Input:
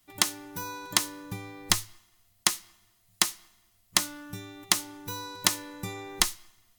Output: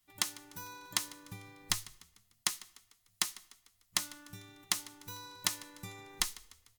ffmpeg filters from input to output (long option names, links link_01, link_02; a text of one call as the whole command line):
ffmpeg -i in.wav -filter_complex "[0:a]equalizer=frequency=390:width_type=o:width=2.3:gain=-5.5,asplit=5[link_01][link_02][link_03][link_04][link_05];[link_02]adelay=149,afreqshift=32,volume=-20dB[link_06];[link_03]adelay=298,afreqshift=64,volume=-26.6dB[link_07];[link_04]adelay=447,afreqshift=96,volume=-33.1dB[link_08];[link_05]adelay=596,afreqshift=128,volume=-39.7dB[link_09];[link_01][link_06][link_07][link_08][link_09]amix=inputs=5:normalize=0,volume=-8dB" out.wav